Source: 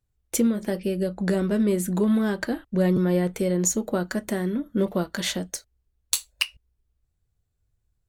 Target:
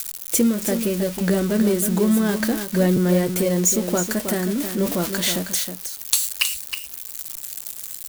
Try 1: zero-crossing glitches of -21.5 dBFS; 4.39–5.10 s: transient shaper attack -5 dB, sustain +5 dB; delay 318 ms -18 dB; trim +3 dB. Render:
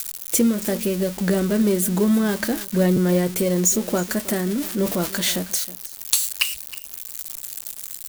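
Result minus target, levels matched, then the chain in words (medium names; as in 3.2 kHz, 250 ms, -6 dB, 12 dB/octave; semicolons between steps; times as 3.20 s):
echo-to-direct -9.5 dB
zero-crossing glitches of -21.5 dBFS; 4.39–5.10 s: transient shaper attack -5 dB, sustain +5 dB; delay 318 ms -8.5 dB; trim +3 dB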